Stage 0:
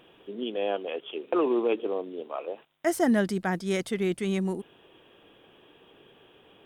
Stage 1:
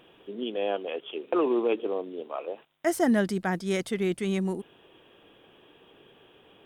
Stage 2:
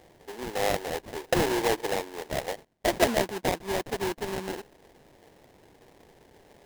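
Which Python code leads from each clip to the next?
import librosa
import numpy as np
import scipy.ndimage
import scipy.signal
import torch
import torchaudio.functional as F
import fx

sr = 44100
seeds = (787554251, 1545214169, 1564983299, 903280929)

y1 = x
y2 = scipy.signal.sosfilt(scipy.signal.butter(2, 570.0, 'highpass', fs=sr, output='sos'), y1)
y2 = fx.high_shelf(y2, sr, hz=2600.0, db=-9.5)
y2 = fx.sample_hold(y2, sr, seeds[0], rate_hz=1300.0, jitter_pct=20)
y2 = y2 * librosa.db_to_amplitude(6.0)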